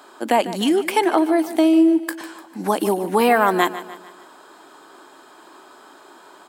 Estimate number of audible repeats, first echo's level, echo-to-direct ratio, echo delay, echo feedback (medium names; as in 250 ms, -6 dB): 4, -14.5 dB, -13.5 dB, 149 ms, 48%